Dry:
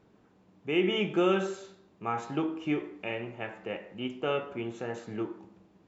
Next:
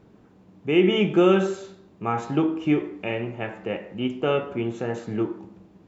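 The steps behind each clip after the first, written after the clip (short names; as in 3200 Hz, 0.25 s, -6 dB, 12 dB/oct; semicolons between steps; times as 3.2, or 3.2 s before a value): low shelf 430 Hz +6.5 dB; gain +4.5 dB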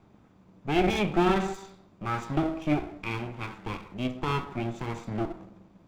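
minimum comb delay 0.83 ms; gain -3 dB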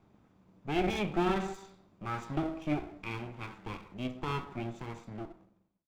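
ending faded out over 1.25 s; gain -6 dB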